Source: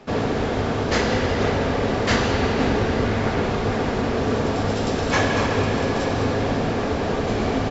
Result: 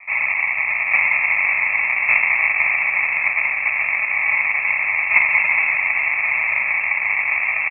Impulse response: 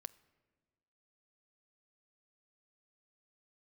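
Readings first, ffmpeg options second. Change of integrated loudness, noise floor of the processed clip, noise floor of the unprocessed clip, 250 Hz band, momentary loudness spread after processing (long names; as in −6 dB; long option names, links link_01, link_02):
+6.0 dB, −23 dBFS, −24 dBFS, below −30 dB, 4 LU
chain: -filter_complex "[0:a]aemphasis=mode=production:type=bsi,acrusher=samples=38:mix=1:aa=0.000001,equalizer=frequency=510:width=1.4:gain=6.5,lowpass=frequency=2300:width_type=q:width=0.5098,lowpass=frequency=2300:width_type=q:width=0.6013,lowpass=frequency=2300:width_type=q:width=0.9,lowpass=frequency=2300:width_type=q:width=2.563,afreqshift=-2700,asplit=2[link_01][link_02];[link_02]asplit=6[link_03][link_04][link_05][link_06][link_07][link_08];[link_03]adelay=276,afreqshift=-79,volume=-14dB[link_09];[link_04]adelay=552,afreqshift=-158,volume=-18.6dB[link_10];[link_05]adelay=828,afreqshift=-237,volume=-23.2dB[link_11];[link_06]adelay=1104,afreqshift=-316,volume=-27.7dB[link_12];[link_07]adelay=1380,afreqshift=-395,volume=-32.3dB[link_13];[link_08]adelay=1656,afreqshift=-474,volume=-36.9dB[link_14];[link_09][link_10][link_11][link_12][link_13][link_14]amix=inputs=6:normalize=0[link_15];[link_01][link_15]amix=inputs=2:normalize=0,volume=1.5dB"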